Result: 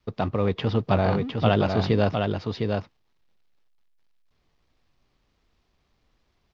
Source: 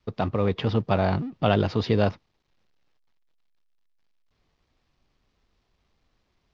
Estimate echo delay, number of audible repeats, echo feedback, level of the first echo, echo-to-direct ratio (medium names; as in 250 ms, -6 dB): 708 ms, 1, no regular repeats, -4.5 dB, -4.5 dB